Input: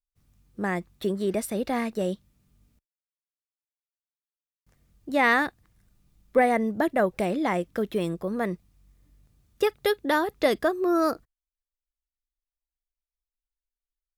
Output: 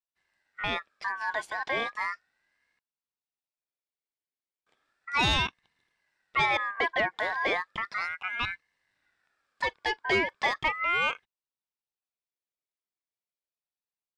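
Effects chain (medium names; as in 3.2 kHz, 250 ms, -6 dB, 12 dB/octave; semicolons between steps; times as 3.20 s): cabinet simulation 230–6200 Hz, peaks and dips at 450 Hz -7 dB, 920 Hz +8 dB, 1.3 kHz -5 dB, 2 kHz +3 dB, 4.9 kHz -10 dB; saturation -18 dBFS, distortion -13 dB; ring modulator with a swept carrier 1.6 kHz, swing 20%, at 0.35 Hz; trim +1.5 dB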